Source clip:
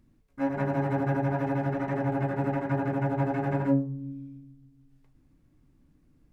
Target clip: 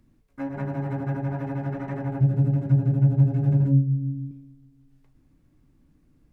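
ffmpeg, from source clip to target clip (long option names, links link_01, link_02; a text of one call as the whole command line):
ffmpeg -i in.wav -filter_complex "[0:a]asettb=1/sr,asplit=3[link_01][link_02][link_03];[link_01]atrim=end=2.204[link_04];[link_02]atrim=start=2.2:end=4.31,asetpts=PTS-STARTPTS,afade=type=in:duration=0.004:curve=qsin,afade=type=out:start_time=2.106:duration=0.004:curve=qsin,equalizer=frequency=125:width_type=o:width=1:gain=12,equalizer=frequency=1000:width_type=o:width=1:gain=-12,equalizer=frequency=2000:width_type=o:width=1:gain=-10[link_05];[link_03]atrim=start=4.306[link_06];[link_04][link_05]acrossfade=duration=0.004:curve1=hsin:curve2=qsin[link_07];[link_07][link_06]acrossfade=duration=0.004:curve1=qsin:curve2=hsin,acrossover=split=230[link_08][link_09];[link_09]acompressor=threshold=-35dB:ratio=6[link_10];[link_08][link_10]amix=inputs=2:normalize=0,volume=2dB" out.wav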